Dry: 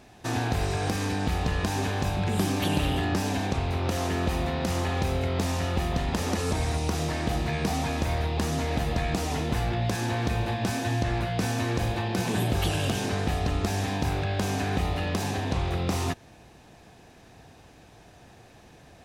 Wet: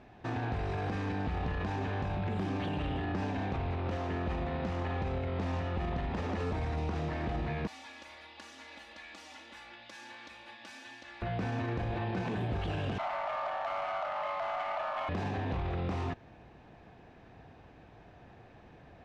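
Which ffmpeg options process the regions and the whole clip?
-filter_complex "[0:a]asettb=1/sr,asplit=3[s0][s1][s2];[s0]atrim=end=7.674[s3];[s1]atrim=start=7.67:end=11.22,asetpts=PTS-STARTPTS,afade=t=in:d=0.004:c=qsin,afade=t=out:st=3.546:d=0.004:c=qsin,aderivative,aecho=1:1:3.5:0.91,atrim=end_sample=156555[s4];[s2]atrim=start=11.216[s5];[s3][s4]acrossfade=d=0.004:c1=hsin:c2=qsin[s6];[s6][s5]acrossfade=d=0.004:c1=qsin:c2=hsin,asettb=1/sr,asplit=3[s7][s8][s9];[s7]atrim=end=12.984[s10];[s8]atrim=start=12.98:end=15.09,asetpts=PTS-STARTPTS,afade=t=in:d=0.004:c=qsin,afade=t=out:st=2.106:d=0.004:c=qsin,highpass=f=130:w=0.5412,highpass=f=130:w=1.3066,afreqshift=470,adynamicsmooth=sensitivity=7.5:basefreq=570[s11];[s9]atrim=start=15.086[s12];[s10][s11]acrossfade=d=0.004:c1=hsin:c2=qsin[s13];[s13][s12]acrossfade=d=0.004:c1=qsin:c2=hsin,lowpass=2400,alimiter=level_in=1.06:limit=0.0631:level=0:latency=1:release=17,volume=0.944,volume=0.75"

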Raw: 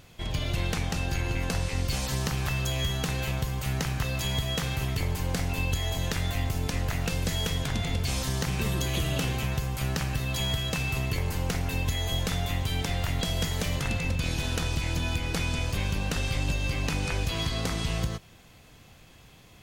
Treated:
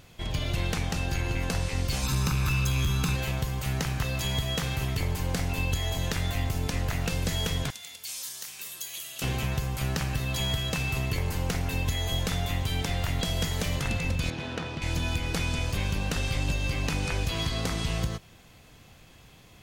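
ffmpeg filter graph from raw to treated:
-filter_complex "[0:a]asettb=1/sr,asplit=3[s0][s1][s2];[s0]atrim=end=2.034[s3];[s1]atrim=start=2.03:end=3.16,asetpts=PTS-STARTPTS,afade=t=in:d=0.004:c=qsin,afade=t=out:st=1.126:d=0.004:c=qsin,aecho=1:1:0.8:0.78,atrim=end_sample=49833,asoftclip=type=hard:threshold=0.0891[s4];[s2]atrim=start=3.156[s5];[s3][s4]acrossfade=d=0.004:c1=hsin:c2=qsin[s6];[s6][s5]acrossfade=d=0.004:c1=qsin:c2=hsin,asettb=1/sr,asplit=3[s7][s8][s9];[s7]atrim=end=7.704[s10];[s8]atrim=start=7.7:end=9.22,asetpts=PTS-STARTPTS,afade=t=in:d=0.004:c=qsin,afade=t=out:st=1.516:d=0.004:c=qsin,aderivative,volume=20,asoftclip=hard,volume=0.0501[s11];[s9]atrim=start=9.216[s12];[s10][s11]acrossfade=d=0.004:c1=hsin:c2=qsin[s13];[s13][s12]acrossfade=d=0.004:c1=qsin:c2=hsin,asettb=1/sr,asplit=3[s14][s15][s16];[s14]atrim=end=14.304[s17];[s15]atrim=start=14.3:end=14.82,asetpts=PTS-STARTPTS,afade=t=in:d=0.004:c=qsin,afade=t=out:st=0.516:d=0.004:c=qsin,highpass=150,adynamicsmooth=sensitivity=1.5:basefreq=2700[s18];[s16]atrim=start=14.816[s19];[s17][s18]acrossfade=d=0.004:c1=hsin:c2=qsin[s20];[s20][s19]acrossfade=d=0.004:c1=qsin:c2=hsin"

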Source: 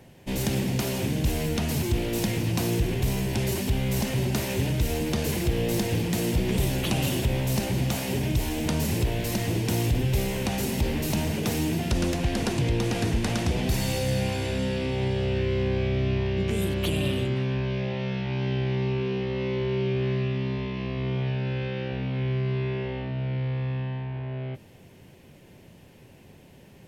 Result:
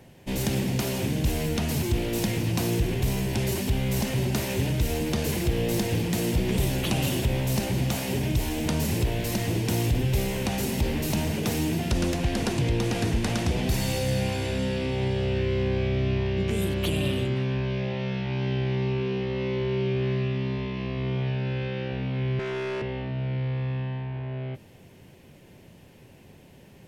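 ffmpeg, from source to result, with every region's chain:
-filter_complex "[0:a]asettb=1/sr,asplit=3[s0][s1][s2];[s0]atrim=end=22.394[s3];[s1]atrim=start=22.39:end=22.82,asetpts=PTS-STARTPTS,afade=t=in:d=0.004:c=qsin,afade=t=out:st=0.426:d=0.004:c=qsin,highpass=280,asplit=2[s4][s5];[s5]highpass=f=720:p=1,volume=14.1,asoftclip=type=tanh:threshold=0.0708[s6];[s4][s6]amix=inputs=2:normalize=0,lowpass=f=1700:p=1,volume=0.501[s7];[s2]atrim=start=22.816[s8];[s3][s7]acrossfade=d=0.004:c1=hsin:c2=qsin[s9];[s9][s8]acrossfade=d=0.004:c1=qsin:c2=hsin"

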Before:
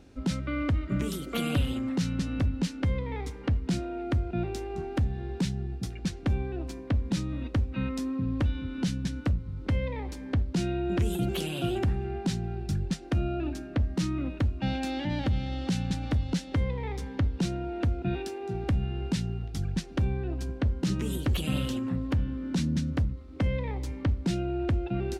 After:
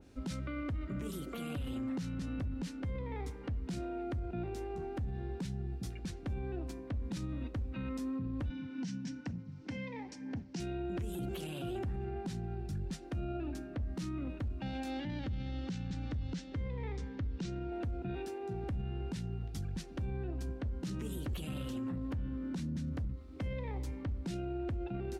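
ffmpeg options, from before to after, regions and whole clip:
-filter_complex "[0:a]asettb=1/sr,asplit=3[s0][s1][s2];[s0]atrim=end=8.504[s3];[s1]atrim=start=8.5:end=10.6,asetpts=PTS-STARTPTS,afade=t=in:d=0.004:c=qsin,afade=t=out:st=2.096:d=0.004:c=qsin,aphaser=in_gain=1:out_gain=1:delay=4.8:decay=0.34:speed=1.1:type=sinusoidal,highpass=f=140:w=0.5412,highpass=f=140:w=1.3066,equalizer=f=390:t=q:w=4:g=-8,equalizer=f=580:t=q:w=4:g=-8,equalizer=f=1200:t=q:w=4:g=-9,equalizer=f=3600:t=q:w=4:g=-5,equalizer=f=5600:t=q:w=4:g=6,lowpass=f=7400:w=0.5412,lowpass=f=7400:w=1.3066[s4];[s2]atrim=start=10.596[s5];[s3][s4]acrossfade=d=0.004:c1=hsin:c2=qsin[s6];[s6][s5]acrossfade=d=0.004:c1=qsin:c2=hsin,asettb=1/sr,asplit=3[s7][s8][s9];[s7]atrim=end=15.004[s10];[s8]atrim=start=15:end=17.72,asetpts=PTS-STARTPTS,afade=t=in:d=0.004:c=qsin,afade=t=out:st=2.716:d=0.004:c=qsin,lowpass=f=7100:w=0.5412,lowpass=f=7100:w=1.3066,equalizer=f=750:t=o:w=0.99:g=-6[s11];[s9]atrim=start=17.716[s12];[s10][s11]acrossfade=d=0.004:c1=hsin:c2=qsin[s13];[s13][s12]acrossfade=d=0.004:c1=qsin:c2=hsin,highshelf=f=7800:g=6.5,alimiter=level_in=1.41:limit=0.0631:level=0:latency=1:release=15,volume=0.708,adynamicequalizer=threshold=0.00178:dfrequency=2200:dqfactor=0.7:tfrequency=2200:tqfactor=0.7:attack=5:release=100:ratio=0.375:range=3:mode=cutabove:tftype=highshelf,volume=0.596"

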